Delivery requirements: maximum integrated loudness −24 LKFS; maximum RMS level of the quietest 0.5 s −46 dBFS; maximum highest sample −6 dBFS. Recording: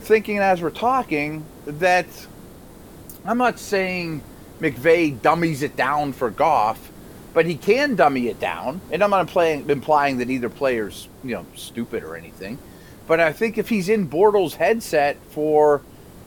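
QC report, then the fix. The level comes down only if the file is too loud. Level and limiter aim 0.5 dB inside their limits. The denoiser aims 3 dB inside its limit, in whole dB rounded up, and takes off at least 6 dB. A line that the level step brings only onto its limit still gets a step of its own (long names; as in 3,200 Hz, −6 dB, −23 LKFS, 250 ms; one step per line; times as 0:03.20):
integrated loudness −20.5 LKFS: out of spec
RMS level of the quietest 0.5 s −42 dBFS: out of spec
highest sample −3.0 dBFS: out of spec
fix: broadband denoise 6 dB, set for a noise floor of −42 dBFS
level −4 dB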